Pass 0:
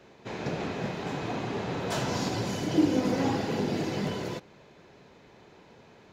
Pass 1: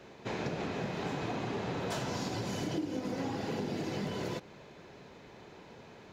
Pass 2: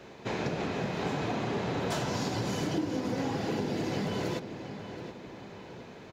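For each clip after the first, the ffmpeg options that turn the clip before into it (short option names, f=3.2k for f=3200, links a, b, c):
-af "acompressor=threshold=-34dB:ratio=10,volume=2dB"
-filter_complex "[0:a]asplit=2[a][b];[b]adelay=725,lowpass=f=3.7k:p=1,volume=-10dB,asplit=2[c][d];[d]adelay=725,lowpass=f=3.7k:p=1,volume=0.47,asplit=2[e][f];[f]adelay=725,lowpass=f=3.7k:p=1,volume=0.47,asplit=2[g][h];[h]adelay=725,lowpass=f=3.7k:p=1,volume=0.47,asplit=2[i][j];[j]adelay=725,lowpass=f=3.7k:p=1,volume=0.47[k];[a][c][e][g][i][k]amix=inputs=6:normalize=0,volume=3.5dB"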